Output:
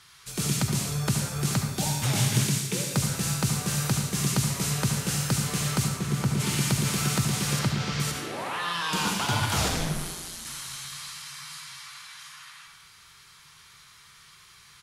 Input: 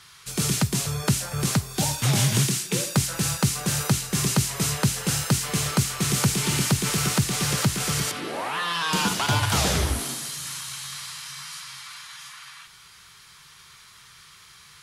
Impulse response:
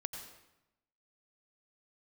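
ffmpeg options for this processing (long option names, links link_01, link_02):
-filter_complex "[0:a]asplit=3[link_01][link_02][link_03];[link_01]afade=type=out:start_time=5.87:duration=0.02[link_04];[link_02]highshelf=frequency=2100:gain=-10.5,afade=type=in:start_time=5.87:duration=0.02,afade=type=out:start_time=6.39:duration=0.02[link_05];[link_03]afade=type=in:start_time=6.39:duration=0.02[link_06];[link_04][link_05][link_06]amix=inputs=3:normalize=0,asettb=1/sr,asplit=3[link_07][link_08][link_09];[link_07]atrim=end=7.594[link_10];[link_08]atrim=start=7.59:end=8,asetpts=PTS-STARTPTS,afade=type=in:duration=0.004:curve=qsin,afade=type=out:start_time=0.406:duration=0.004:curve=qsin,lowpass=frequency=5300:width=0.5412,lowpass=frequency=5300:width=1.3066[link_11];[link_09]atrim=start=7.996[link_12];[link_10][link_11]acrossfade=duration=0.004:curve1=hsin:curve2=qsin[link_13];[link_13][link_12]acrossfade=duration=0.004:curve1=qsin:curve2=hsin,asplit=3[link_14][link_15][link_16];[link_14]afade=type=out:start_time=9.68:duration=0.02[link_17];[link_15]aeval=exprs='val(0)*sin(2*PI*87*n/s)':channel_layout=same,afade=type=in:start_time=9.68:duration=0.02,afade=type=out:start_time=10.44:duration=0.02[link_18];[link_16]afade=type=in:start_time=10.44:duration=0.02[link_19];[link_17][link_18][link_19]amix=inputs=3:normalize=0,aecho=1:1:373|746|1119:0.0794|0.0357|0.0161[link_20];[1:a]atrim=start_sample=2205,asetrate=57330,aresample=44100[link_21];[link_20][link_21]afir=irnorm=-1:irlink=0"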